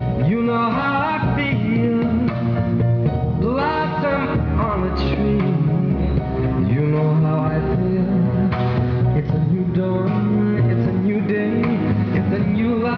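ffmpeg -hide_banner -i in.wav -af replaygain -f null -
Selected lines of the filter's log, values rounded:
track_gain = +3.0 dB
track_peak = 0.215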